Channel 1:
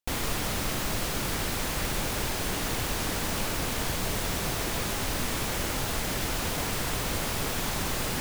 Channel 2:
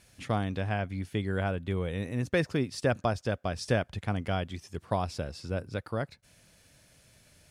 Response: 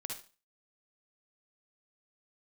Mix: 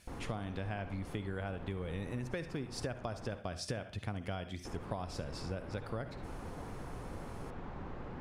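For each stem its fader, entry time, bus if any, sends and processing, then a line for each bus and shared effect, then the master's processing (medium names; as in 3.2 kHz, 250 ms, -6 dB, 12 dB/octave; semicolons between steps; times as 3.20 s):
-11.5 dB, 0.00 s, muted 3.39–4.65 s, no send, low-pass 1.1 kHz 12 dB/octave; band-stop 630 Hz, Q 13
-4.0 dB, 0.00 s, send -5.5 dB, none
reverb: on, RT60 0.35 s, pre-delay 48 ms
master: compression 12:1, threshold -35 dBFS, peak gain reduction 13 dB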